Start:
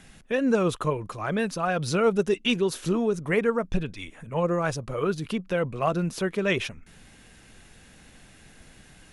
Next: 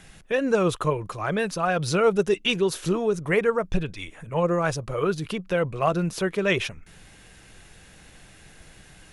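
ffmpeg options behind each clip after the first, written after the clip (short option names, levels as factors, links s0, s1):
-af "equalizer=f=240:w=4.4:g=-8.5,volume=1.33"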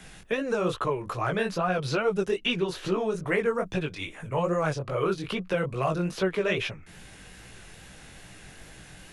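-filter_complex "[0:a]acrossover=split=81|350|4400[s0][s1][s2][s3];[s0]acompressor=threshold=0.00282:ratio=4[s4];[s1]acompressor=threshold=0.0178:ratio=4[s5];[s2]acompressor=threshold=0.0398:ratio=4[s6];[s3]acompressor=threshold=0.002:ratio=4[s7];[s4][s5][s6][s7]amix=inputs=4:normalize=0,flanger=delay=15.5:depth=7.4:speed=2.4,volume=1.88"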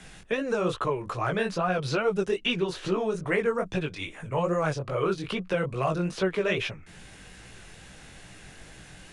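-af "aresample=22050,aresample=44100"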